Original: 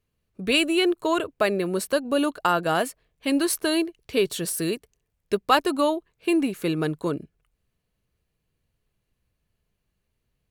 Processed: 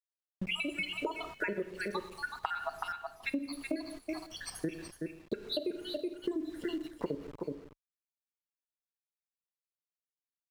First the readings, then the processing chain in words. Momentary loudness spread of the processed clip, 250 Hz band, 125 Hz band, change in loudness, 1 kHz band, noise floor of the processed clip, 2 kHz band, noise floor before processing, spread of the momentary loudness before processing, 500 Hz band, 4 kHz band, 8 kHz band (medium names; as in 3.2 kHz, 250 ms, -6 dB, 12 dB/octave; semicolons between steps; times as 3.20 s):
7 LU, -13.5 dB, -13.5 dB, -13.5 dB, -15.0 dB, under -85 dBFS, -9.0 dB, -78 dBFS, 8 LU, -14.5 dB, -12.0 dB, -18.5 dB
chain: random holes in the spectrogram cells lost 80%; gated-style reverb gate 260 ms falling, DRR 8.5 dB; in parallel at -1.5 dB: level held to a coarse grid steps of 18 dB; on the sum: frequency weighting A; word length cut 8-bit, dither none; tilt EQ -3.5 dB/octave; on a send: delay 374 ms -9 dB; on the sum: compression 12:1, threshold -31 dBFS, peak gain reduction 13 dB